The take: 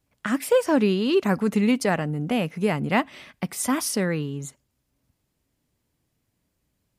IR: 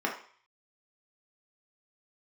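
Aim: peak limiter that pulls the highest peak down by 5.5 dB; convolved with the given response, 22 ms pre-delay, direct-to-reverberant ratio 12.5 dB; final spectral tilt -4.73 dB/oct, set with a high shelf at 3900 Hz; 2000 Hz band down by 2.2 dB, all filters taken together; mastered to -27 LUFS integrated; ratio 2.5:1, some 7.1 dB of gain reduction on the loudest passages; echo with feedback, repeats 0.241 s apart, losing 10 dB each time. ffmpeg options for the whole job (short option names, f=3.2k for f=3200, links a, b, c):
-filter_complex "[0:a]equalizer=f=2k:t=o:g=-4,highshelf=f=3.9k:g=5,acompressor=threshold=-26dB:ratio=2.5,alimiter=limit=-19.5dB:level=0:latency=1,aecho=1:1:241|482|723|964:0.316|0.101|0.0324|0.0104,asplit=2[a][b];[1:a]atrim=start_sample=2205,adelay=22[c];[b][c]afir=irnorm=-1:irlink=0,volume=-21.5dB[d];[a][d]amix=inputs=2:normalize=0,volume=2dB"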